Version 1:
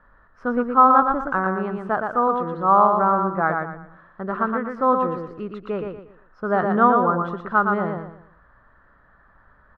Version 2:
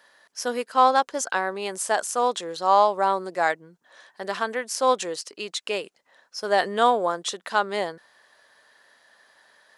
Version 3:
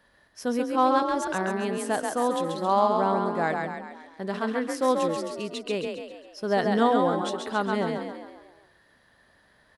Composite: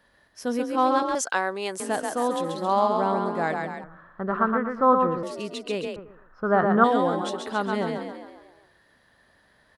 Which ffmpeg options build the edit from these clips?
-filter_complex "[0:a]asplit=2[a][b];[2:a]asplit=4[c][d][e][f];[c]atrim=end=1.152[g];[1:a]atrim=start=1.148:end=1.802[h];[d]atrim=start=1.798:end=3.842[i];[a]atrim=start=3.838:end=5.232[j];[e]atrim=start=5.228:end=5.962[k];[b]atrim=start=5.958:end=6.842[l];[f]atrim=start=6.838[m];[g][h]acrossfade=d=0.004:c1=hsin:c2=hsin[n];[n][i]acrossfade=d=0.004:c1=hsin:c2=hsin[o];[o][j]acrossfade=d=0.004:c1=hsin:c2=hsin[p];[p][k]acrossfade=d=0.004:c1=hsin:c2=hsin[q];[q][l]acrossfade=d=0.004:c1=hsin:c2=hsin[r];[r][m]acrossfade=d=0.004:c1=hsin:c2=hsin"

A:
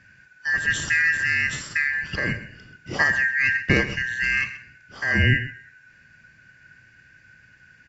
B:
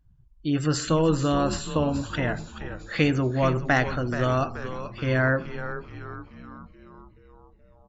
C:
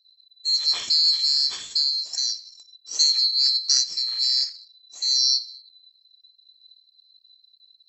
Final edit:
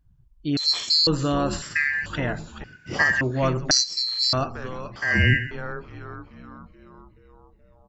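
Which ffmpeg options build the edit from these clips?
-filter_complex "[2:a]asplit=2[a][b];[0:a]asplit=3[c][d][e];[1:a]asplit=6[f][g][h][i][j][k];[f]atrim=end=0.572[l];[a]atrim=start=0.568:end=1.072[m];[g]atrim=start=1.068:end=1.622[n];[c]atrim=start=1.618:end=2.062[o];[h]atrim=start=2.058:end=2.642[p];[d]atrim=start=2.638:end=3.212[q];[i]atrim=start=3.208:end=3.712[r];[b]atrim=start=3.708:end=4.332[s];[j]atrim=start=4.328:end=4.962[t];[e]atrim=start=4.958:end=5.512[u];[k]atrim=start=5.508[v];[l][m]acrossfade=d=0.004:c1=hsin:c2=hsin[w];[w][n]acrossfade=d=0.004:c1=hsin:c2=hsin[x];[x][o]acrossfade=d=0.004:c1=hsin:c2=hsin[y];[y][p]acrossfade=d=0.004:c1=hsin:c2=hsin[z];[z][q]acrossfade=d=0.004:c1=hsin:c2=hsin[aa];[aa][r]acrossfade=d=0.004:c1=hsin:c2=hsin[ab];[ab][s]acrossfade=d=0.004:c1=hsin:c2=hsin[ac];[ac][t]acrossfade=d=0.004:c1=hsin:c2=hsin[ad];[ad][u]acrossfade=d=0.004:c1=hsin:c2=hsin[ae];[ae][v]acrossfade=d=0.004:c1=hsin:c2=hsin"

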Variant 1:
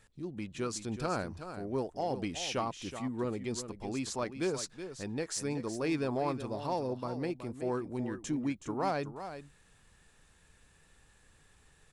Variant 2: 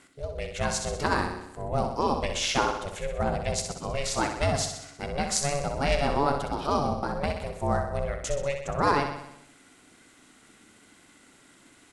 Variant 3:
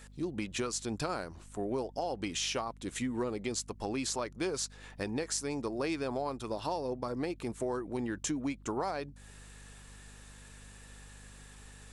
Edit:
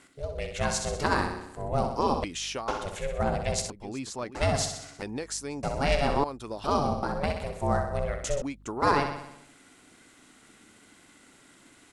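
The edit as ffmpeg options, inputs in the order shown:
-filter_complex "[2:a]asplit=4[a][b][c][d];[1:a]asplit=6[e][f][g][h][i][j];[e]atrim=end=2.242[k];[a]atrim=start=2.238:end=2.682[l];[f]atrim=start=2.678:end=3.702[m];[0:a]atrim=start=3.698:end=4.352[n];[g]atrim=start=4.348:end=5.022[o];[b]atrim=start=5.018:end=5.632[p];[h]atrim=start=5.628:end=6.242[q];[c]atrim=start=6.238:end=6.642[r];[i]atrim=start=6.638:end=8.422[s];[d]atrim=start=8.418:end=8.822[t];[j]atrim=start=8.818[u];[k][l]acrossfade=d=0.004:c1=hsin:c2=hsin[v];[v][m]acrossfade=d=0.004:c1=hsin:c2=hsin[w];[w][n]acrossfade=d=0.004:c1=hsin:c2=hsin[x];[x][o]acrossfade=d=0.004:c1=hsin:c2=hsin[y];[y][p]acrossfade=d=0.004:c1=hsin:c2=hsin[z];[z][q]acrossfade=d=0.004:c1=hsin:c2=hsin[aa];[aa][r]acrossfade=d=0.004:c1=hsin:c2=hsin[ab];[ab][s]acrossfade=d=0.004:c1=hsin:c2=hsin[ac];[ac][t]acrossfade=d=0.004:c1=hsin:c2=hsin[ad];[ad][u]acrossfade=d=0.004:c1=hsin:c2=hsin"

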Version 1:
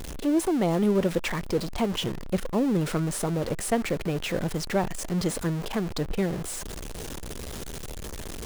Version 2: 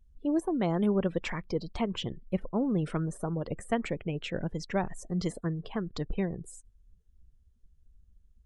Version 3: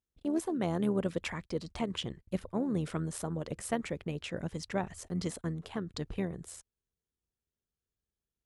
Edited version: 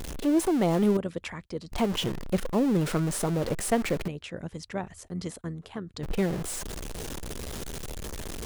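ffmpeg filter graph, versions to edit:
-filter_complex "[2:a]asplit=2[a][b];[0:a]asplit=3[c][d][e];[c]atrim=end=0.972[f];[a]atrim=start=0.968:end=1.722[g];[d]atrim=start=1.718:end=4.082[h];[b]atrim=start=4.078:end=6.032[i];[e]atrim=start=6.028[j];[f][g]acrossfade=d=0.004:c1=hsin:c2=hsin[k];[k][h]acrossfade=d=0.004:c1=hsin:c2=hsin[l];[l][i]acrossfade=d=0.004:c1=hsin:c2=hsin[m];[m][j]acrossfade=d=0.004:c1=hsin:c2=hsin"

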